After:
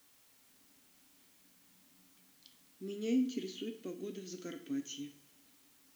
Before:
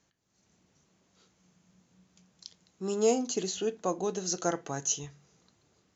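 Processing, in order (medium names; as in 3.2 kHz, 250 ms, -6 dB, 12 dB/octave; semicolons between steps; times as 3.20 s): vowel filter i; word length cut 12-bit, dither triangular; two-slope reverb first 0.45 s, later 1.8 s, DRR 7 dB; trim +5 dB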